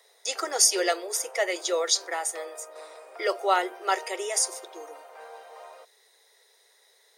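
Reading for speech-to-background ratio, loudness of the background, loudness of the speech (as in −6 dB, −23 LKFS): 19.0 dB, −45.0 LKFS, −26.0 LKFS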